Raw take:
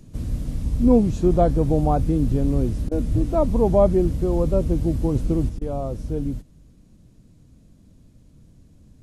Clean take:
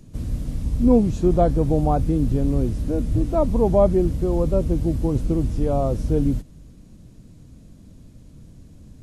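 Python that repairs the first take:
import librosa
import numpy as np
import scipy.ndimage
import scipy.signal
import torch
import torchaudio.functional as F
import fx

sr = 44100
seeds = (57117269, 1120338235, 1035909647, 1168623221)

y = fx.fix_interpolate(x, sr, at_s=(2.89, 5.59), length_ms=23.0)
y = fx.gain(y, sr, db=fx.steps((0.0, 0.0), (5.49, 6.0)))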